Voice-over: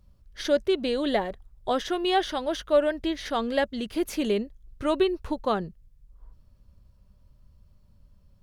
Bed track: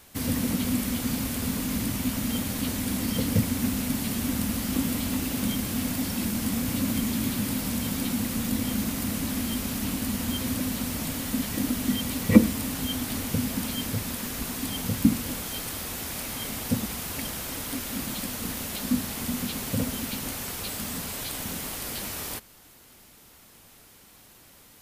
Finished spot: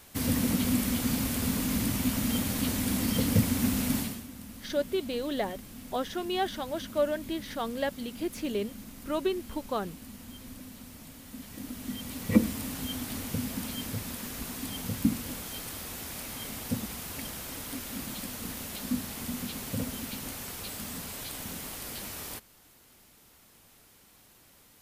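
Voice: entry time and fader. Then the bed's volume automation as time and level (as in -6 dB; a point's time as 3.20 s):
4.25 s, -6.0 dB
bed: 3.99 s -0.5 dB
4.27 s -17 dB
11.23 s -17 dB
12.49 s -5.5 dB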